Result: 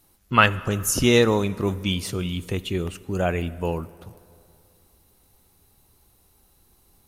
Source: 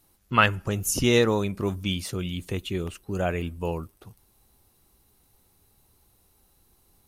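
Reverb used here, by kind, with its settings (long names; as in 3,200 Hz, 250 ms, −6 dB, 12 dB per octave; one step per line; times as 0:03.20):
dense smooth reverb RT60 2.6 s, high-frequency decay 0.6×, DRR 17 dB
level +3 dB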